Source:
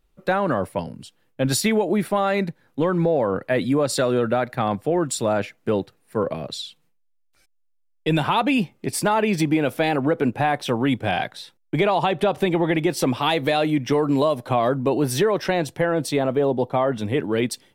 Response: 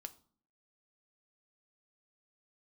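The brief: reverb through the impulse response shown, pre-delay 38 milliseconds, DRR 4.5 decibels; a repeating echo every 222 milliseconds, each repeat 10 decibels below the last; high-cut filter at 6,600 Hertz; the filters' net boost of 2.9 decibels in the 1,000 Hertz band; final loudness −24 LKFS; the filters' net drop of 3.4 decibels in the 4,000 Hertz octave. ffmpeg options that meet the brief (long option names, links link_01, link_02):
-filter_complex "[0:a]lowpass=6600,equalizer=frequency=1000:width_type=o:gain=4,equalizer=frequency=4000:width_type=o:gain=-4,aecho=1:1:222|444|666|888:0.316|0.101|0.0324|0.0104,asplit=2[link_01][link_02];[1:a]atrim=start_sample=2205,adelay=38[link_03];[link_02][link_03]afir=irnorm=-1:irlink=0,volume=0.5dB[link_04];[link_01][link_04]amix=inputs=2:normalize=0,volume=-4.5dB"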